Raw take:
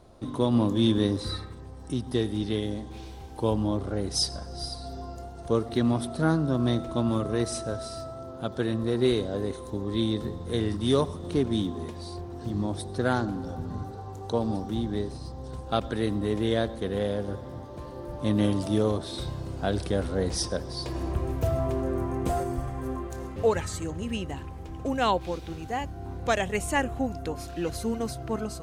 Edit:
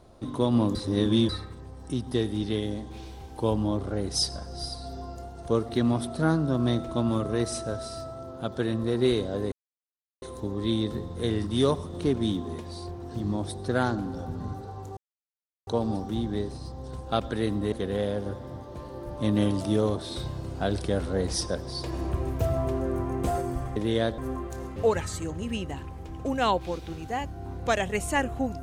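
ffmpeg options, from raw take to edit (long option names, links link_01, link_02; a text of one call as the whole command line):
ffmpeg -i in.wav -filter_complex "[0:a]asplit=8[link_01][link_02][link_03][link_04][link_05][link_06][link_07][link_08];[link_01]atrim=end=0.752[link_09];[link_02]atrim=start=0.748:end=1.292,asetpts=PTS-STARTPTS,areverse[link_10];[link_03]atrim=start=1.288:end=9.52,asetpts=PTS-STARTPTS,afade=type=out:start_time=8.228:duration=0.004:curve=hsin,apad=pad_dur=0.7[link_11];[link_04]atrim=start=9.52:end=14.27,asetpts=PTS-STARTPTS,afade=type=in:duration=0.004:curve=hsin,afade=type=out:start_time=4.746:duration=0.004:curve=hsin,apad=pad_dur=0.7[link_12];[link_05]atrim=start=14.27:end=16.322,asetpts=PTS-STARTPTS,afade=type=in:duration=0.004:curve=hsin[link_13];[link_06]atrim=start=16.738:end=22.782[link_14];[link_07]atrim=start=16.318:end=16.742[link_15];[link_08]atrim=start=22.778[link_16];[link_09][link_10]acrossfade=duration=0.004:curve1=hsin:curve2=hsin[link_17];[link_11][link_12][link_13]concat=n=3:v=0:a=1[link_18];[link_17][link_18]acrossfade=duration=0.004:curve1=hsin:curve2=hsin[link_19];[link_19][link_14]acrossfade=duration=0.004:curve1=hsin:curve2=hsin[link_20];[link_20][link_15]acrossfade=duration=0.004:curve1=hsin:curve2=hsin[link_21];[link_21][link_16]acrossfade=duration=0.004:curve1=hsin:curve2=hsin" out.wav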